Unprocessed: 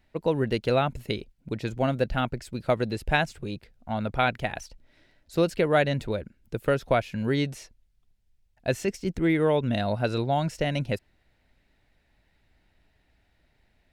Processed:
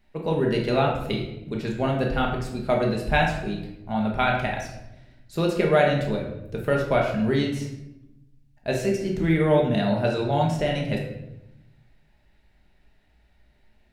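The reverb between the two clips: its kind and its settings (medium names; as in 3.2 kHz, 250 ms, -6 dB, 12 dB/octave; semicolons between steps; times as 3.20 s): simulated room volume 300 m³, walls mixed, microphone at 1.3 m; trim -1.5 dB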